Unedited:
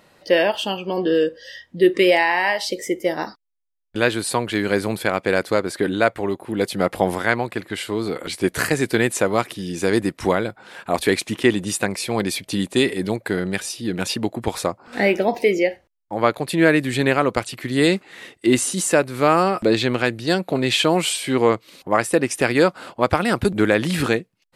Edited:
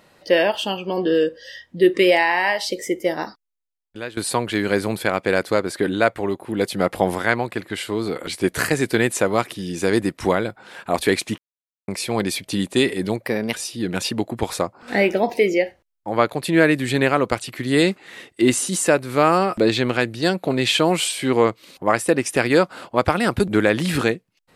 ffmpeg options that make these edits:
ffmpeg -i in.wav -filter_complex "[0:a]asplit=6[link_01][link_02][link_03][link_04][link_05][link_06];[link_01]atrim=end=4.17,asetpts=PTS-STARTPTS,afade=type=out:start_time=3.11:duration=1.06:silence=0.133352[link_07];[link_02]atrim=start=4.17:end=11.38,asetpts=PTS-STARTPTS,afade=type=in:duration=0.004:curve=hsin:silence=0.133352,afade=type=out:start_time=7.206:duration=0.004:curve=hsin[link_08];[link_03]atrim=start=11.38:end=11.88,asetpts=PTS-STARTPTS,volume=0[link_09];[link_04]atrim=start=11.88:end=13.264,asetpts=PTS-STARTPTS,afade=type=in:duration=0.004:curve=hsin[link_10];[link_05]atrim=start=13.26:end=13.58,asetpts=PTS-STARTPTS,asetrate=52038,aresample=44100,atrim=end_sample=11959,asetpts=PTS-STARTPTS[link_11];[link_06]atrim=start=13.576[link_12];[link_07][link_08][link_09][link_10]concat=n=4:v=0:a=1[link_13];[link_13][link_11]acrossfade=duration=0.004:curve1=hsin:curve2=hsin[link_14];[link_14][link_12]acrossfade=duration=0.004:curve1=hsin:curve2=hsin" out.wav

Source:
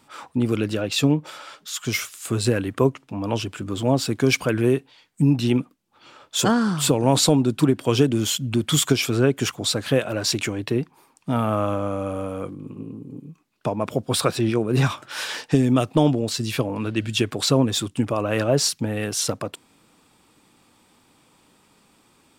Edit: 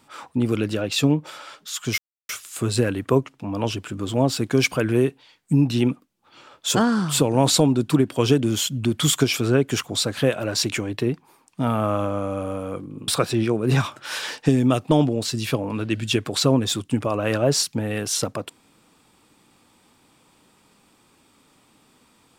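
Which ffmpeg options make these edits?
ffmpeg -i in.wav -filter_complex "[0:a]asplit=3[link_01][link_02][link_03];[link_01]atrim=end=1.98,asetpts=PTS-STARTPTS,afade=type=out:start_time=1.976:duration=0.004:curve=hsin,apad=pad_dur=0.31[link_04];[link_02]atrim=start=1.98:end=12.772,asetpts=PTS-STARTPTS,afade=type=in:duration=0.004:curve=hsin[link_05];[link_03]atrim=start=14.138[link_06];[link_04][link_05]concat=n=2:v=0:a=1[link_07];[link_07][link_06]acrossfade=duration=0.004:curve1=hsin:curve2=hsin" out.wav

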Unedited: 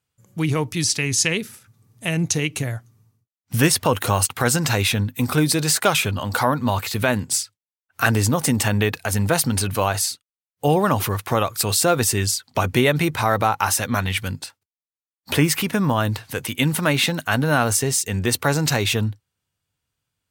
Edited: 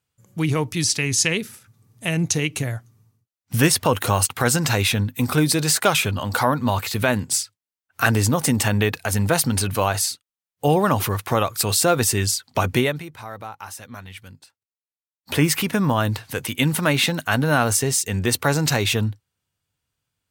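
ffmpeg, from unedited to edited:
ffmpeg -i in.wav -filter_complex "[0:a]asplit=3[link_01][link_02][link_03];[link_01]atrim=end=13.03,asetpts=PTS-STARTPTS,afade=type=out:start_time=12.74:duration=0.29:silence=0.158489[link_04];[link_02]atrim=start=13.03:end=15.15,asetpts=PTS-STARTPTS,volume=-16dB[link_05];[link_03]atrim=start=15.15,asetpts=PTS-STARTPTS,afade=type=in:duration=0.29:silence=0.158489[link_06];[link_04][link_05][link_06]concat=n=3:v=0:a=1" out.wav

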